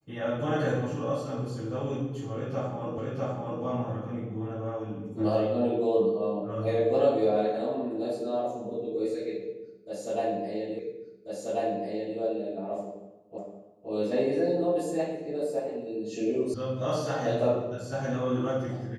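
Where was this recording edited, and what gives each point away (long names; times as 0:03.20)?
0:02.98: the same again, the last 0.65 s
0:10.79: the same again, the last 1.39 s
0:13.38: the same again, the last 0.52 s
0:16.54: cut off before it has died away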